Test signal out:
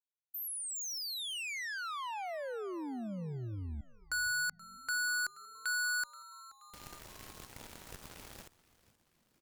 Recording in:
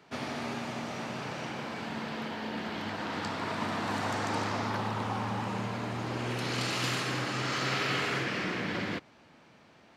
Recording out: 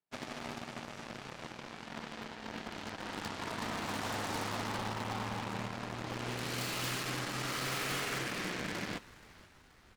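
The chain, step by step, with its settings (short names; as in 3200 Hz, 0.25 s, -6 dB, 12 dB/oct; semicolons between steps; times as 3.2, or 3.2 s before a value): added harmonics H 7 -17 dB, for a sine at -19.5 dBFS; wavefolder -26.5 dBFS; frequency-shifting echo 0.478 s, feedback 56%, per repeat -130 Hz, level -19.5 dB; gain -1 dB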